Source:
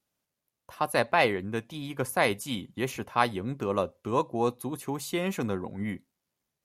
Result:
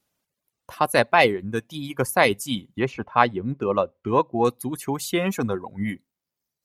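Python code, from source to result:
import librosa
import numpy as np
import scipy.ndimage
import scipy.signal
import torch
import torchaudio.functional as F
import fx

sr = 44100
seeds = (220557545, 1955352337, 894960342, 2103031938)

y = fx.dereverb_blind(x, sr, rt60_s=1.4)
y = fx.lowpass(y, sr, hz=2900.0, slope=12, at=(2.79, 4.45))
y = F.gain(torch.from_numpy(y), 7.0).numpy()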